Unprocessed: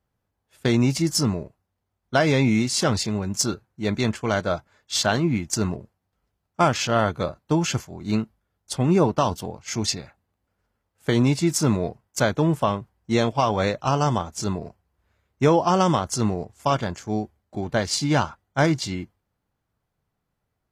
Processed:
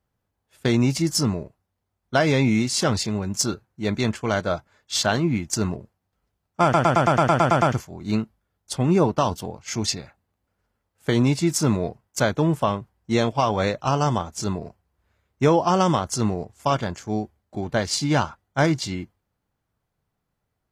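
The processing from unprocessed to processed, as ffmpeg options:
-filter_complex "[0:a]asplit=11[s0][s1][s2][s3][s4][s5][s6][s7][s8][s9][s10];[s0]atrim=end=6.742[s11];[s1]atrim=start=6.628:end=6.742[s12];[s2]atrim=start=6.628:end=6.742[s13];[s3]atrim=start=6.628:end=6.742[s14];[s4]atrim=start=6.628:end=6.742[s15];[s5]atrim=start=6.628:end=6.742[s16];[s6]atrim=start=6.628:end=6.742[s17];[s7]atrim=start=6.628:end=6.742[s18];[s8]atrim=start=6.628:end=6.742[s19];[s9]atrim=start=6.628:end=6.742[s20];[s10]atrim=start=7.728[s21];[s11][s12]acrossfade=d=0.004:c1=hsin:c2=hsin[s22];[s22][s13]acrossfade=d=0.004:c1=hsin:c2=hsin[s23];[s23][s14]acrossfade=d=0.004:c1=hsin:c2=hsin[s24];[s24][s15]acrossfade=d=0.004:c1=hsin:c2=hsin[s25];[s25][s16]acrossfade=d=0.004:c1=hsin:c2=hsin[s26];[s26][s17]acrossfade=d=0.004:c1=hsin:c2=hsin[s27];[s27][s18]acrossfade=d=0.004:c1=hsin:c2=hsin[s28];[s28][s19]acrossfade=d=0.004:c1=hsin:c2=hsin[s29];[s29][s20]acrossfade=d=0.004:c1=hsin:c2=hsin[s30];[s30][s21]acrossfade=d=0.004:c1=hsin:c2=hsin"

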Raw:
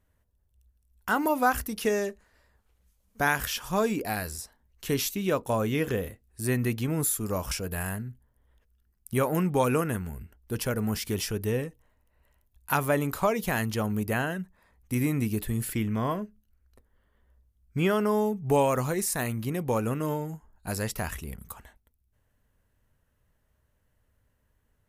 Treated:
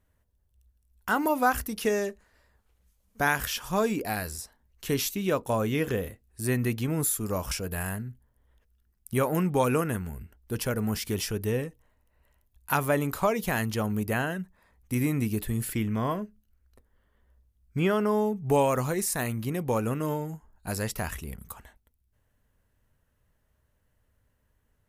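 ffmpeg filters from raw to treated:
-filter_complex "[0:a]asettb=1/sr,asplit=3[s0][s1][s2];[s0]atrim=end=17.794[s3];[s1]atrim=start=17.79:end=18.36,asetpts=PTS-STARTPTS,afade=t=in:d=0.004:c=qsin,afade=t=out:st=0.566:d=0.004:c=qsin,highshelf=f=4600:g=-5[s4];[s2]atrim=start=18.356[s5];[s3][s4]acrossfade=d=0.004:c1=hsin:c2=qsin[s6];[s6][s5]acrossfade=d=0.004:c1=qsin:c2=hsin"

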